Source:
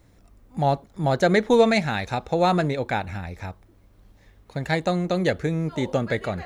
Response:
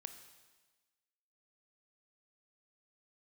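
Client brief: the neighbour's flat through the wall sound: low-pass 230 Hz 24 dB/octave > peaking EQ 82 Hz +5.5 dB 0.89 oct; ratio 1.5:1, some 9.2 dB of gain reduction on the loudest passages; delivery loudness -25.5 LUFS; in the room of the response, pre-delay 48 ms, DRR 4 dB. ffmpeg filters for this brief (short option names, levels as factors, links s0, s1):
-filter_complex "[0:a]acompressor=threshold=0.0112:ratio=1.5,asplit=2[s0][s1];[1:a]atrim=start_sample=2205,adelay=48[s2];[s1][s2]afir=irnorm=-1:irlink=0,volume=1.06[s3];[s0][s3]amix=inputs=2:normalize=0,lowpass=f=230:w=0.5412,lowpass=f=230:w=1.3066,equalizer=f=82:t=o:w=0.89:g=5.5,volume=2.99"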